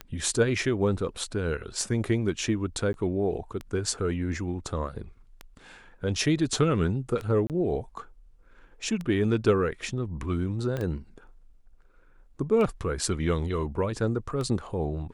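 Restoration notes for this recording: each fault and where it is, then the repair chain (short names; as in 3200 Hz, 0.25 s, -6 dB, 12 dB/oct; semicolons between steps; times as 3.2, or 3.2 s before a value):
tick 33 1/3 rpm -21 dBFS
2.93–2.94 gap 11 ms
7.47–7.5 gap 28 ms
10.77 pop -19 dBFS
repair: de-click; interpolate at 2.93, 11 ms; interpolate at 7.47, 28 ms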